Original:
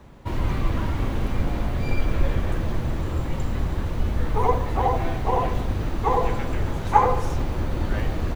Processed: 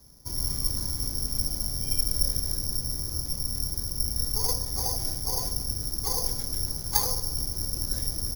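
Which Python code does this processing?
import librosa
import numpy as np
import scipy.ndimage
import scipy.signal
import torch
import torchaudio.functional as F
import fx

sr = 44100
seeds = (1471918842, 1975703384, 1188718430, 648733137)

y = fx.tracing_dist(x, sr, depth_ms=0.14)
y = (np.kron(scipy.signal.resample_poly(y, 1, 8), np.eye(8)[0]) * 8)[:len(y)]
y = fx.low_shelf(y, sr, hz=310.0, db=9.0)
y = y * librosa.db_to_amplitude(-18.0)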